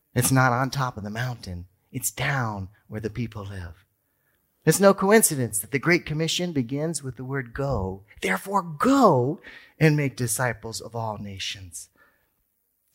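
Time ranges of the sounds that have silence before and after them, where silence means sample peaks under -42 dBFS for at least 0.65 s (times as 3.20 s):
4.66–11.85 s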